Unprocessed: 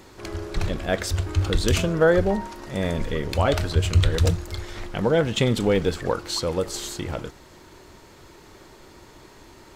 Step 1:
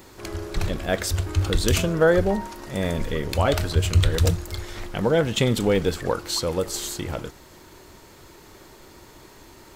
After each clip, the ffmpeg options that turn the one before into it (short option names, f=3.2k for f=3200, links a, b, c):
-af "highshelf=f=11k:g=11.5"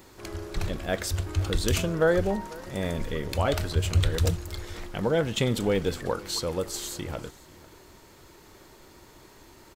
-af "aecho=1:1:492:0.0841,volume=-4.5dB"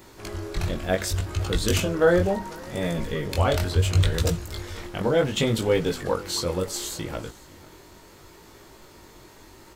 -af "flanger=delay=17.5:depth=5.3:speed=0.7,volume=6dB"